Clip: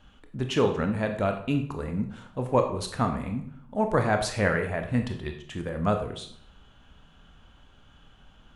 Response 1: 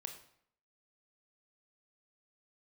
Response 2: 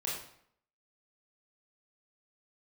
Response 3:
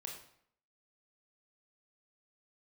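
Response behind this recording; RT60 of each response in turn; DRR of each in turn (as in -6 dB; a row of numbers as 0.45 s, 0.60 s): 1; 0.65 s, 0.65 s, 0.65 s; 4.5 dB, -5.5 dB, 0.0 dB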